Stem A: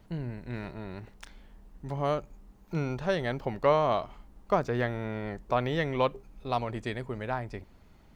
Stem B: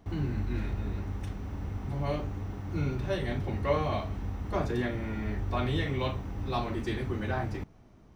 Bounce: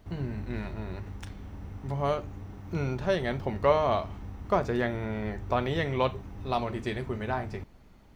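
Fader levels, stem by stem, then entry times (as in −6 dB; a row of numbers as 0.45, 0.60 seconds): 0.0, −5.5 decibels; 0.00, 0.00 seconds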